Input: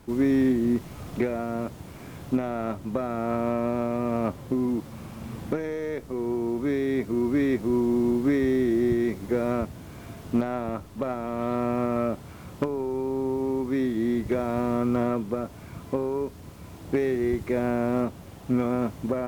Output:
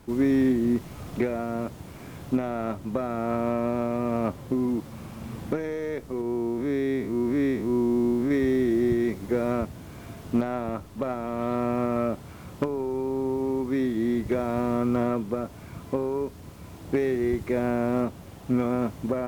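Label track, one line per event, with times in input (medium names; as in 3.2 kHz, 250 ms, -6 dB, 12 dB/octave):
6.210000	8.310000	spectral blur width 110 ms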